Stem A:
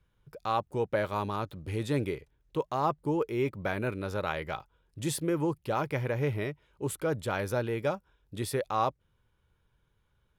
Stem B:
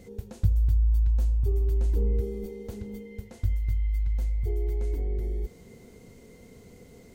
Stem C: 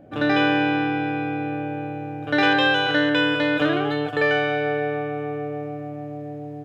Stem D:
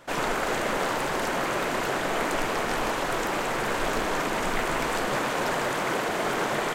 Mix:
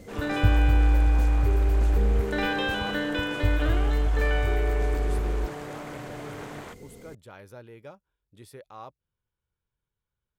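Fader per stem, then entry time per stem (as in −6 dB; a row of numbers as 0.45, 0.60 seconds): −15.0, +2.5, −9.5, −15.0 decibels; 0.00, 0.00, 0.00, 0.00 seconds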